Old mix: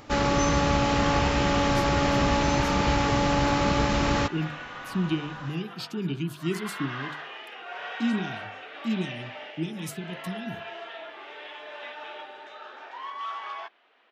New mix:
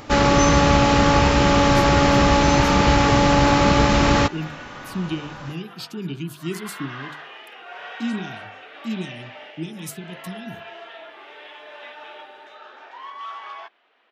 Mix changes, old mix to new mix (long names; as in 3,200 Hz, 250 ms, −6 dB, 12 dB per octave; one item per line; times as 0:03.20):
speech: add high-shelf EQ 6,500 Hz +7 dB
first sound +7.5 dB